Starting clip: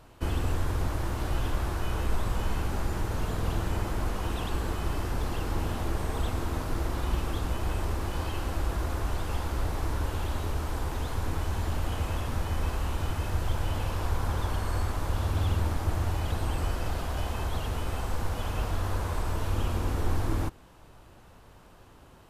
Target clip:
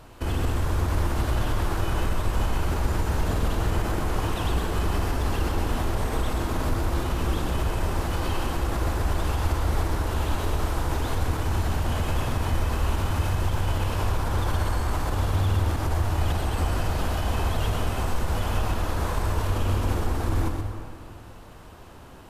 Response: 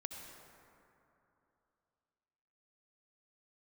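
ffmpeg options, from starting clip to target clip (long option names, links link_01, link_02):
-filter_complex "[0:a]alimiter=limit=-24dB:level=0:latency=1:release=41,asplit=2[link_01][link_02];[1:a]atrim=start_sample=2205,asetrate=52920,aresample=44100,adelay=125[link_03];[link_02][link_03]afir=irnorm=-1:irlink=0,volume=0dB[link_04];[link_01][link_04]amix=inputs=2:normalize=0,volume=6dB"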